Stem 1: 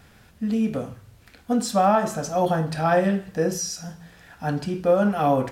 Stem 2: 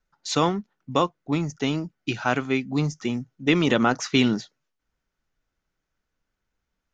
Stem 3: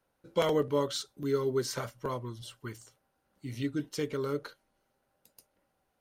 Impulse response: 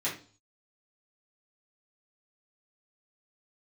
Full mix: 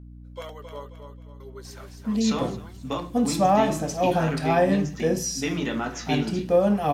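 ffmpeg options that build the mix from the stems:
-filter_complex "[0:a]equalizer=frequency=1400:width=7.2:gain=-14,adelay=1650,volume=-0.5dB[link_01];[1:a]acompressor=threshold=-31dB:ratio=2,adelay=1950,volume=-5dB,asplit=3[link_02][link_03][link_04];[link_03]volume=-4dB[link_05];[link_04]volume=-15.5dB[link_06];[2:a]highpass=630,aphaser=in_gain=1:out_gain=1:delay=1.9:decay=0.38:speed=1.3:type=sinusoidal,volume=-9dB,asplit=3[link_07][link_08][link_09];[link_07]atrim=end=0.9,asetpts=PTS-STARTPTS,afade=type=out:start_time=0.896:duration=0.004:curve=hsin[link_10];[link_08]atrim=start=0.9:end=1.4,asetpts=PTS-STARTPTS,volume=0[link_11];[link_09]atrim=start=1.4,asetpts=PTS-STARTPTS,afade=type=in:duration=0.004:curve=hsin[link_12];[link_10][link_11][link_12]concat=n=3:v=0:a=1,asplit=2[link_13][link_14];[link_14]volume=-7.5dB[link_15];[3:a]atrim=start_sample=2205[link_16];[link_05][link_16]afir=irnorm=-1:irlink=0[link_17];[link_06][link_15]amix=inputs=2:normalize=0,aecho=0:1:267|534|801|1068|1335:1|0.39|0.152|0.0593|0.0231[link_18];[link_01][link_02][link_13][link_17][link_18]amix=inputs=5:normalize=0,aeval=exprs='val(0)+0.00794*(sin(2*PI*60*n/s)+sin(2*PI*2*60*n/s)/2+sin(2*PI*3*60*n/s)/3+sin(2*PI*4*60*n/s)/4+sin(2*PI*5*60*n/s)/5)':channel_layout=same"

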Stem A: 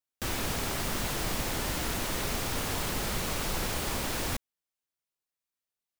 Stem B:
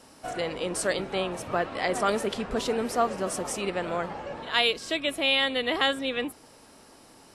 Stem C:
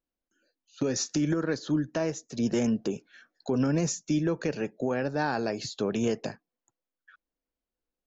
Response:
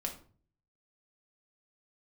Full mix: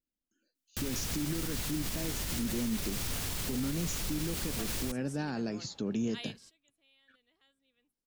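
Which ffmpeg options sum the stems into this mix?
-filter_complex "[0:a]adelay=550,volume=1.5dB[link_01];[1:a]adelay=1600,volume=-15.5dB[link_02];[2:a]equalizer=frequency=240:width_type=o:width=1.6:gain=8.5,volume=-3.5dB,asplit=2[link_03][link_04];[link_04]apad=whole_len=394339[link_05];[link_02][link_05]sidechaingate=range=-25dB:threshold=-55dB:ratio=16:detection=peak[link_06];[link_01][link_06][link_03]amix=inputs=3:normalize=0,equalizer=frequency=730:width=0.39:gain=-10.5,alimiter=level_in=0.5dB:limit=-24dB:level=0:latency=1:release=76,volume=-0.5dB"

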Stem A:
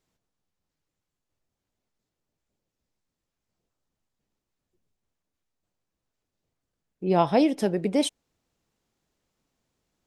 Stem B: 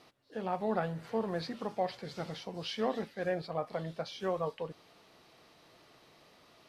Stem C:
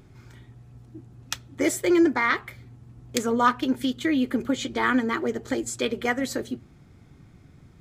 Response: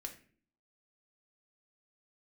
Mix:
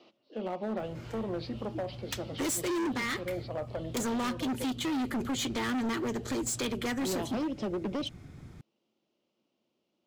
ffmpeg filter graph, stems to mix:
-filter_complex "[0:a]volume=-3.5dB[link_01];[1:a]volume=-2.5dB[link_02];[2:a]adelay=800,volume=3dB[link_03];[link_01][link_02]amix=inputs=2:normalize=0,highpass=180,equalizer=frequency=220:width_type=q:width=4:gain=8,equalizer=frequency=340:width_type=q:width=4:gain=10,equalizer=frequency=580:width_type=q:width=4:gain=8,equalizer=frequency=1700:width_type=q:width=4:gain=-9,equalizer=frequency=2900:width_type=q:width=4:gain=8,lowpass=frequency=5500:width=0.5412,lowpass=frequency=5500:width=1.3066,acompressor=threshold=-27dB:ratio=2,volume=0dB[link_04];[link_03][link_04]amix=inputs=2:normalize=0,acrossover=split=280|3000[link_05][link_06][link_07];[link_06]acompressor=threshold=-30dB:ratio=6[link_08];[link_05][link_08][link_07]amix=inputs=3:normalize=0,asoftclip=type=hard:threshold=-29dB"

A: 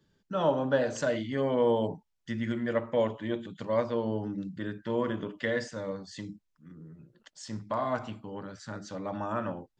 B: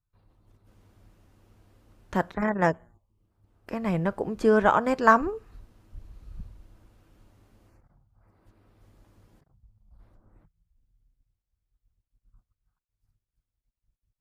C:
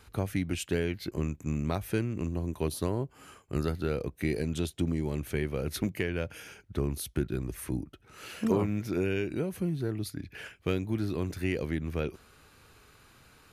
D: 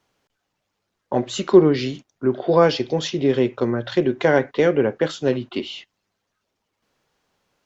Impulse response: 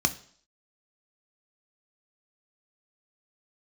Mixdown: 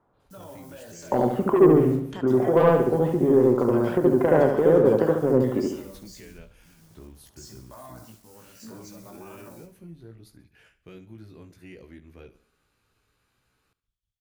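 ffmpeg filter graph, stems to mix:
-filter_complex "[0:a]alimiter=limit=-24dB:level=0:latency=1,acrusher=bits=8:mix=0:aa=0.000001,aexciter=amount=5.7:drive=3.3:freq=4400,volume=-8dB,asplit=2[link_01][link_02];[link_02]volume=-16dB[link_03];[1:a]equalizer=frequency=3300:width_type=o:width=0.37:gain=11.5,acompressor=threshold=-25dB:ratio=6,volume=-10.5dB,asplit=2[link_04][link_05];[link_05]volume=-11.5dB[link_06];[2:a]adelay=200,volume=-11.5dB,asplit=2[link_07][link_08];[link_08]volume=-19dB[link_09];[3:a]lowpass=frequency=1200:width=0.5412,lowpass=frequency=1200:width=1.3066,acontrast=68,volume=-3.5dB,asplit=3[link_10][link_11][link_12];[link_11]volume=-3.5dB[link_13];[link_12]apad=whole_len=605492[link_14];[link_07][link_14]sidechaincompress=threshold=-19dB:ratio=8:attack=16:release=762[link_15];[link_04][link_10]amix=inputs=2:normalize=0,equalizer=frequency=5200:width=0.34:gain=7.5,acompressor=threshold=-20dB:ratio=6,volume=0dB[link_16];[link_01][link_15]amix=inputs=2:normalize=0,flanger=delay=15.5:depth=2.6:speed=0.66,alimiter=level_in=10.5dB:limit=-24dB:level=0:latency=1:release=19,volume=-10.5dB,volume=0dB[link_17];[link_03][link_06][link_09][link_13]amix=inputs=4:normalize=0,aecho=0:1:70|140|210|280|350|420|490:1|0.47|0.221|0.104|0.0488|0.0229|0.0108[link_18];[link_16][link_17][link_18]amix=inputs=3:normalize=0"

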